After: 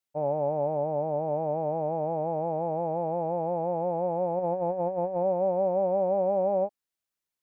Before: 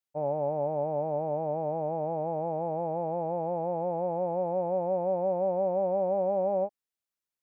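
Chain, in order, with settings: 0.77–1.28 s: distance through air 190 m; 4.39–5.23 s: compressor with a negative ratio -30 dBFS, ratio -0.5; trim +2 dB

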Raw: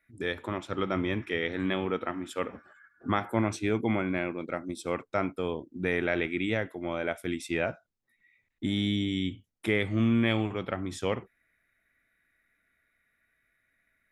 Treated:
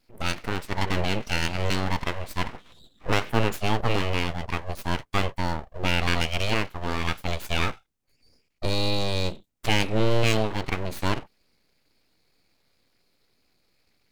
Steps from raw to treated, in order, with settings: full-wave rectifier; formant shift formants +3 st; trim +6 dB

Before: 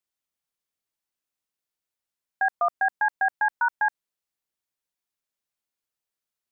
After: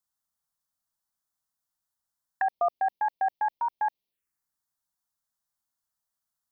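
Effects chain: touch-sensitive phaser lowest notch 430 Hz, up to 1.5 kHz, full sweep at -31 dBFS; trim +3.5 dB

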